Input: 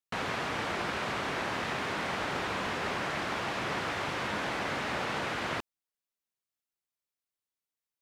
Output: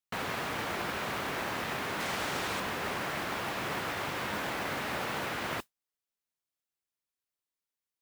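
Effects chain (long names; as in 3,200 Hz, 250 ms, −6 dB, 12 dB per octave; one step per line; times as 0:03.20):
0:02.00–0:02.60: high-shelf EQ 5,100 Hz +11 dB
noise that follows the level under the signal 15 dB
level −1.5 dB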